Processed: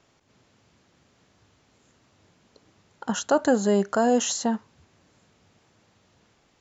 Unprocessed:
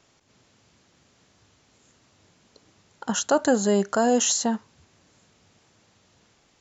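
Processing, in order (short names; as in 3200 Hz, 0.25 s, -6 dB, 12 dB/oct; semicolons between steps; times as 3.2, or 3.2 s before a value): high shelf 3900 Hz -7 dB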